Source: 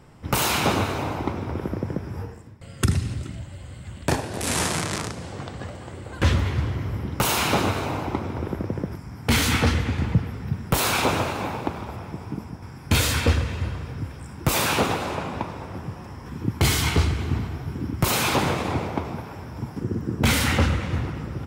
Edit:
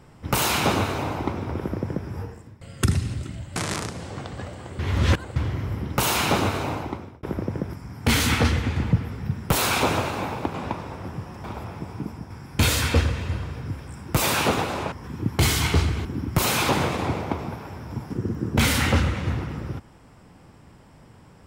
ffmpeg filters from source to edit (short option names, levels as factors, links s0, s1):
-filter_complex "[0:a]asplit=9[s0][s1][s2][s3][s4][s5][s6][s7][s8];[s0]atrim=end=3.562[s9];[s1]atrim=start=4.778:end=6.012[s10];[s2]atrim=start=6.008:end=6.582,asetpts=PTS-STARTPTS,areverse[s11];[s3]atrim=start=6.578:end=8.45,asetpts=PTS-STARTPTS,afade=t=out:st=1.342:d=0.53[s12];[s4]atrim=start=8.45:end=11.762,asetpts=PTS-STARTPTS,afade=t=in:d=0.004:c=hsin[s13];[s5]atrim=start=15.238:end=16.142[s14];[s6]atrim=start=11.758:end=15.242[s15];[s7]atrim=start=16.138:end=17.272[s16];[s8]atrim=start=17.708[s17];[s9][s10]acrossfade=d=0.004:c1=hsin:c2=hsin[s18];[s18][s11]acrossfade=d=0.004:c1=hsin:c2=hsin[s19];[s12][s13]concat=n=2:v=0:a=1[s20];[s19][s20]acrossfade=d=0.004:c1=hsin:c2=hsin[s21];[s21][s14]acrossfade=d=0.004:c1=hsin:c2=hsin[s22];[s22][s15]acrossfade=d=0.004:c1=hsin:c2=hsin[s23];[s23][s16]acrossfade=d=0.004:c1=hsin:c2=hsin[s24];[s24][s17]acrossfade=d=0.004:c1=hsin:c2=hsin"